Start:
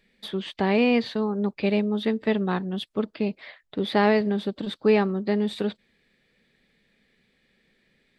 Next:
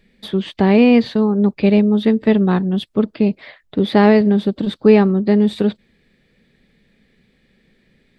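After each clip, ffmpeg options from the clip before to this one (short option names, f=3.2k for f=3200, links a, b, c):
-af "lowshelf=f=390:g=9.5,volume=4dB"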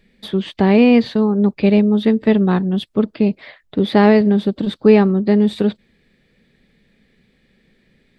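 -af anull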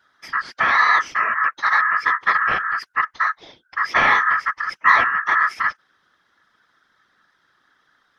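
-af "aeval=exprs='val(0)*sin(2*PI*1500*n/s)':c=same,afftfilt=real='hypot(re,im)*cos(2*PI*random(0))':imag='hypot(re,im)*sin(2*PI*random(1))':win_size=512:overlap=0.75,volume=4dB"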